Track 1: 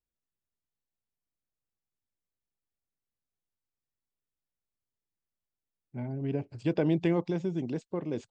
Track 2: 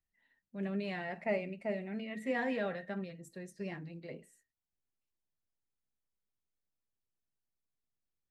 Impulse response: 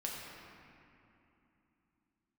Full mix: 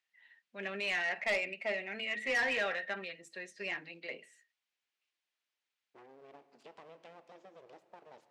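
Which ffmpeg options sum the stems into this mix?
-filter_complex "[0:a]agate=range=-33dB:threshold=-47dB:ratio=3:detection=peak,acompressor=threshold=-37dB:ratio=6,aeval=exprs='abs(val(0))':c=same,volume=-9dB,asplit=2[a][b];[b]volume=-11dB[c];[1:a]equalizer=f=2.6k:w=0.61:g=13.5,volume=0.5dB[d];[2:a]atrim=start_sample=2205[e];[c][e]afir=irnorm=-1:irlink=0[f];[a][d][f]amix=inputs=3:normalize=0,highpass=410,lowpass=7.4k,asoftclip=type=tanh:threshold=-25.5dB"

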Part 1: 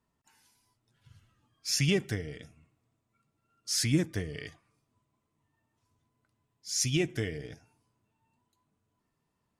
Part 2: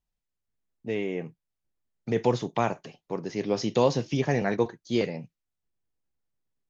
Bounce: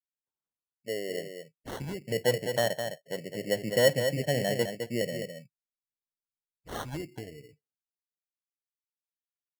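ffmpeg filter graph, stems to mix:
-filter_complex "[0:a]equalizer=f=65:w=0.71:g=-6.5,acompressor=threshold=-31dB:ratio=6,volume=-2dB,afade=t=out:st=7.03:d=0.76:silence=0.266073,asplit=2[a][b];[b]volume=-22.5dB[c];[1:a]asubboost=boost=10.5:cutoff=130,lowpass=f=570:t=q:w=6.2,aemphasis=mode=production:type=riaa,volume=-5dB,asplit=3[d][e][f];[e]volume=-7dB[g];[f]apad=whole_len=422994[h];[a][h]sidechaincompress=threshold=-40dB:ratio=4:attack=11:release=834[i];[c][g]amix=inputs=2:normalize=0,aecho=0:1:209:1[j];[i][d][j]amix=inputs=3:normalize=0,afftdn=nr=34:nf=-44,acrusher=samples=18:mix=1:aa=0.000001"

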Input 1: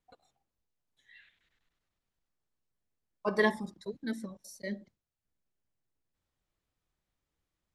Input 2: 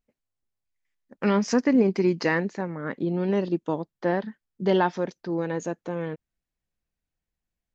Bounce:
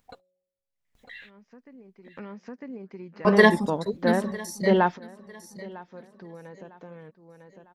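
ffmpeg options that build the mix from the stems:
-filter_complex "[0:a]agate=range=-43dB:threshold=-60dB:ratio=16:detection=peak,bandreject=f=183.2:t=h:w=4,bandreject=f=366.4:t=h:w=4,bandreject=f=549.6:t=h:w=4,dynaudnorm=f=720:g=5:m=13.5dB,volume=-1dB,asplit=3[a][b][c];[b]volume=-21dB[d];[1:a]acrossover=split=3200[e][f];[f]acompressor=threshold=-57dB:ratio=4:attack=1:release=60[g];[e][g]amix=inputs=2:normalize=0,volume=1.5dB,asplit=2[h][i];[i]volume=-23dB[j];[c]apad=whole_len=341444[k];[h][k]sidechaingate=range=-49dB:threshold=-50dB:ratio=16:detection=peak[l];[d][j]amix=inputs=2:normalize=0,aecho=0:1:952|1904|2856:1|0.15|0.0225[m];[a][l][m]amix=inputs=3:normalize=0,equalizer=f=330:w=7.2:g=-7.5,acompressor=mode=upward:threshold=-33dB:ratio=2.5"

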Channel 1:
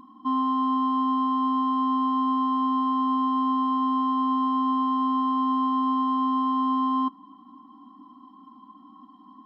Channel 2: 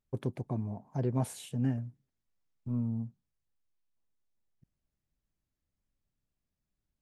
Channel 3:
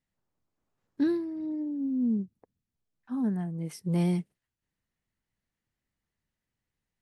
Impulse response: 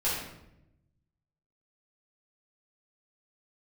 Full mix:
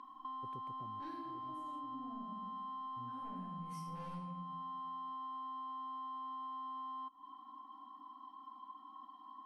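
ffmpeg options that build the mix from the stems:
-filter_complex "[0:a]volume=-1dB[a];[1:a]adelay=300,volume=-11dB[b];[2:a]equalizer=f=310:t=o:w=0.57:g=-13,asoftclip=type=tanh:threshold=-33dB,volume=-3dB,asplit=3[c][d][e];[d]volume=-6dB[f];[e]apad=whole_len=322375[g];[b][g]sidechaincompress=threshold=-57dB:ratio=8:attack=16:release=390[h];[a][c]amix=inputs=2:normalize=0,highpass=670,lowpass=4.4k,alimiter=level_in=8dB:limit=-24dB:level=0:latency=1:release=217,volume=-8dB,volume=0dB[i];[3:a]atrim=start_sample=2205[j];[f][j]afir=irnorm=-1:irlink=0[k];[h][i][k]amix=inputs=3:normalize=0,acompressor=threshold=-44dB:ratio=5"

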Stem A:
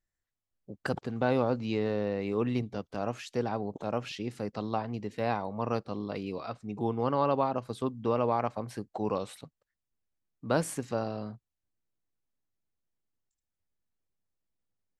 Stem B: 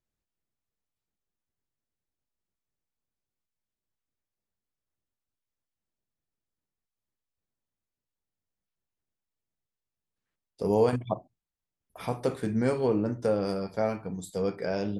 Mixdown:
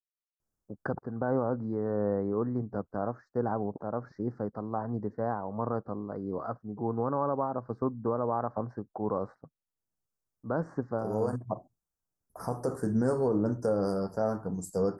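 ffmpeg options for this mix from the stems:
-filter_complex "[0:a]agate=range=-33dB:threshold=-40dB:ratio=3:detection=peak,lowpass=f=3k:w=0.5412,lowpass=f=3k:w=1.3066,tremolo=f=1.4:d=0.44,volume=3dB,asplit=2[a][b];[1:a]adelay=400,volume=1.5dB[c];[b]apad=whole_len=679067[d];[c][d]sidechaincompress=threshold=-37dB:ratio=8:attack=21:release=825[e];[a][e]amix=inputs=2:normalize=0,asuperstop=centerf=2900:order=8:qfactor=0.79,alimiter=limit=-18dB:level=0:latency=1:release=94"

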